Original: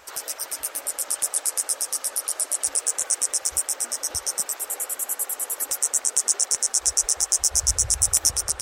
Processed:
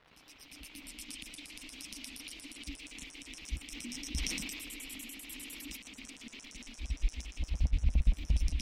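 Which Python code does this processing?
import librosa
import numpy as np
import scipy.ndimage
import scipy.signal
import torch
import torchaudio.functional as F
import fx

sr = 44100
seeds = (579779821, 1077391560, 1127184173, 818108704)

y = fx.fade_in_head(x, sr, length_s=1.46)
y = scipy.signal.sosfilt(scipy.signal.ellip(3, 1.0, 40, [310.0, 2300.0], 'bandstop', fs=sr, output='sos'), y)
y = fx.low_shelf(y, sr, hz=83.0, db=11.0)
y = fx.over_compress(y, sr, threshold_db=-27.0, ratio=-0.5)
y = fx.fixed_phaser(y, sr, hz=380.0, stages=6)
y = fx.dmg_crackle(y, sr, seeds[0], per_s=560.0, level_db=-48.0)
y = fx.air_absorb(y, sr, metres=360.0)
y = fx.sustainer(y, sr, db_per_s=29.0, at=(3.65, 5.77))
y = y * 10.0 ** (6.5 / 20.0)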